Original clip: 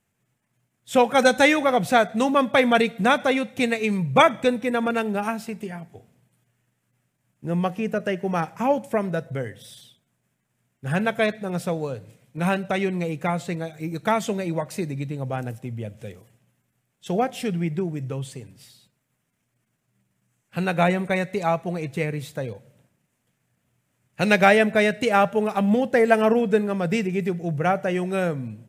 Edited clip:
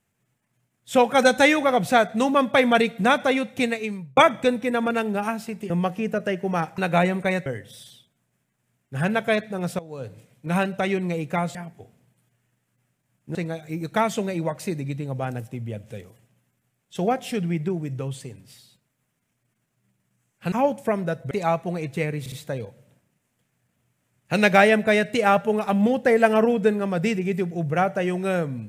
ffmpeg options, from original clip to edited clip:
-filter_complex "[0:a]asplit=12[s0][s1][s2][s3][s4][s5][s6][s7][s8][s9][s10][s11];[s0]atrim=end=4.17,asetpts=PTS-STARTPTS,afade=t=out:st=3.6:d=0.57[s12];[s1]atrim=start=4.17:end=5.702,asetpts=PTS-STARTPTS,afade=t=in:d=0.004:c=hsin[s13];[s2]atrim=start=7.498:end=8.582[s14];[s3]atrim=start=20.628:end=21.312[s15];[s4]atrim=start=9.368:end=11.7,asetpts=PTS-STARTPTS,afade=t=out:st=2.328:d=0.004:c=hsin:silence=0.149624[s16];[s5]atrim=start=11.7:end=13.462,asetpts=PTS-STARTPTS,afade=t=in:d=0.27:c=qua:silence=0.149624[s17];[s6]atrim=start=5.698:end=7.502[s18];[s7]atrim=start=13.458:end=20.632[s19];[s8]atrim=start=8.578:end=9.372[s20];[s9]atrim=start=21.308:end=22.262[s21];[s10]atrim=start=22.198:end=22.262[s22];[s11]atrim=start=22.198[s23];[s12][s13]concat=n=2:v=0:a=1[s24];[s24][s14]acrossfade=d=0.004:c1=hsin:c2=hsin[s25];[s25][s15]acrossfade=d=0.004:c1=hsin:c2=hsin[s26];[s16][s17]concat=n=2:v=0:a=1[s27];[s26][s27]acrossfade=d=0.004:c1=hsin:c2=hsin[s28];[s28][s18]acrossfade=d=0.004:c1=hsin:c2=hsin[s29];[s29][s19]acrossfade=d=0.004:c1=hsin:c2=hsin[s30];[s30][s20]acrossfade=d=0.004:c1=hsin:c2=hsin[s31];[s31][s21]acrossfade=d=0.004:c1=hsin:c2=hsin[s32];[s32][s22]acrossfade=d=0.004:c1=hsin:c2=hsin[s33];[s33][s23]acrossfade=d=0.004:c1=hsin:c2=hsin"

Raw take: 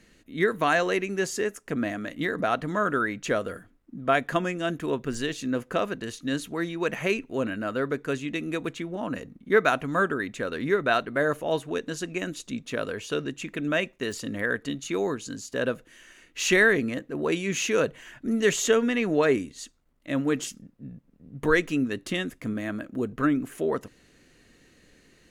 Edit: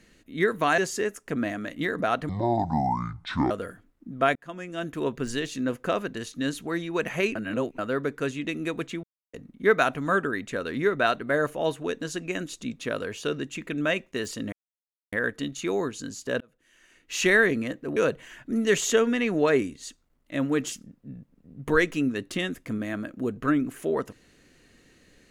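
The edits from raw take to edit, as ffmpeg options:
-filter_complex "[0:a]asplit=12[s0][s1][s2][s3][s4][s5][s6][s7][s8][s9][s10][s11];[s0]atrim=end=0.782[s12];[s1]atrim=start=1.178:end=2.694[s13];[s2]atrim=start=2.69:end=3.37,asetpts=PTS-STARTPTS,asetrate=24696,aresample=44100[s14];[s3]atrim=start=3.366:end=4.22,asetpts=PTS-STARTPTS,afade=t=out:st=0.85:d=0.004:c=hsin[s15];[s4]atrim=start=4.22:end=7.222,asetpts=PTS-STARTPTS,afade=t=in:d=0.71[s16];[s5]atrim=start=7.218:end=7.652,asetpts=PTS-STARTPTS,areverse[s17];[s6]atrim=start=7.648:end=8.9,asetpts=PTS-STARTPTS,afade=t=out:st=1.248:d=0.004:c=hsin[s18];[s7]atrim=start=8.9:end=9.2,asetpts=PTS-STARTPTS,volume=0[s19];[s8]atrim=start=9.2:end=14.39,asetpts=PTS-STARTPTS,afade=t=in:d=0.004:c=hsin,afade=t=out:st=5.186:d=0.004:c=hsin,apad=pad_dur=0.6[s20];[s9]atrim=start=14.39:end=15.67,asetpts=PTS-STARTPTS,afade=t=in:d=0.004:c=hsin,afade=t=out:st=1.276:d=0.004:c=hsin[s21];[s10]atrim=start=15.67:end=17.232,asetpts=PTS-STARTPTS,afade=t=in:d=0.98[s22];[s11]atrim=start=17.718[s23];[s12][s13]acrossfade=d=0.004:c1=hsin:c2=hsin[s24];[s24][s14]acrossfade=d=0.004:c1=hsin:c2=hsin[s25];[s15][s16]concat=n=2:v=0:a=1[s26];[s25][s26]acrossfade=d=0.004:c1=hsin:c2=hsin[s27];[s27][s17]acrossfade=d=0.004:c1=hsin:c2=hsin[s28];[s18][s19][s20][s21][s22]concat=n=5:v=0:a=1[s29];[s28][s29]acrossfade=d=0.004:c1=hsin:c2=hsin[s30];[s30][s23]acrossfade=d=0.004:c1=hsin:c2=hsin"

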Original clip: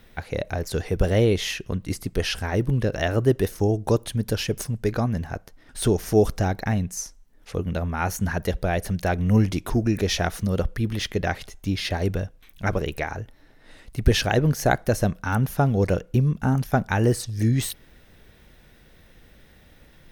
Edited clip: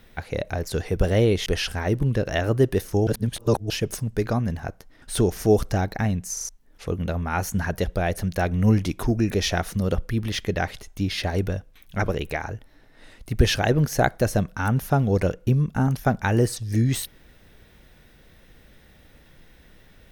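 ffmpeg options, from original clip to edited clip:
-filter_complex "[0:a]asplit=8[s0][s1][s2][s3][s4][s5][s6][s7];[s0]atrim=end=1.462[s8];[s1]atrim=start=2.128:end=3.742[s9];[s2]atrim=start=3.738:end=4.372,asetpts=PTS-STARTPTS,areverse[s10];[s3]atrim=start=4.368:end=7.042[s11];[s4]atrim=start=6.998:end=7.042[s12];[s5]atrim=start=6.998:end=7.042[s13];[s6]atrim=start=6.998:end=7.042[s14];[s7]atrim=start=7.158[s15];[s8][s9]acrossfade=d=0.004:c1=hsin:c2=hsin[s16];[s16][s10]acrossfade=d=0.004:c1=hsin:c2=hsin[s17];[s17][s11]acrossfade=d=0.004:c1=hsin:c2=hsin[s18];[s18][s12]acrossfade=d=0.004:c1=hsin:c2=hsin[s19];[s19][s13]acrossfade=d=0.004:c1=hsin:c2=hsin[s20];[s20][s14]acrossfade=d=0.004:c1=hsin:c2=hsin[s21];[s21][s15]acrossfade=d=0.004:c1=hsin:c2=hsin"

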